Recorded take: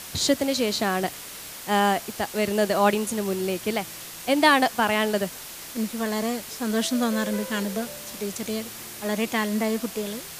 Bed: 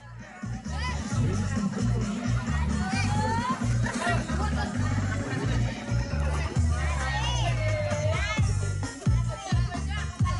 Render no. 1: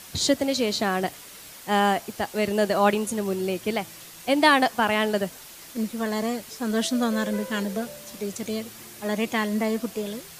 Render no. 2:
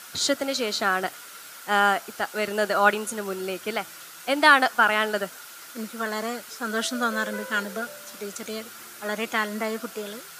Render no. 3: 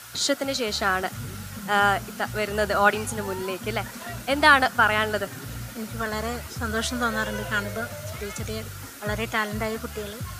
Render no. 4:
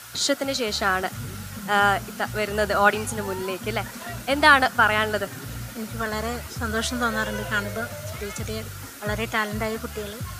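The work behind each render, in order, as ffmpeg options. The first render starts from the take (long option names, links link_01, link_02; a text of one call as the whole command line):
ffmpeg -i in.wav -af "afftdn=noise_reduction=6:noise_floor=-39" out.wav
ffmpeg -i in.wav -af "highpass=frequency=460:poles=1,equalizer=frequency=1400:width=4.7:gain=14" out.wav
ffmpeg -i in.wav -i bed.wav -filter_complex "[1:a]volume=-10dB[link_01];[0:a][link_01]amix=inputs=2:normalize=0" out.wav
ffmpeg -i in.wav -af "volume=1dB" out.wav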